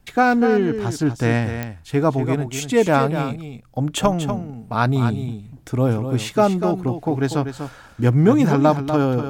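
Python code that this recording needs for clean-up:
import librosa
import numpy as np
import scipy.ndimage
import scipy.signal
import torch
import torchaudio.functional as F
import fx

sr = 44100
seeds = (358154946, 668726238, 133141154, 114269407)

y = fx.fix_declick_ar(x, sr, threshold=10.0)
y = fx.fix_echo_inverse(y, sr, delay_ms=243, level_db=-9.0)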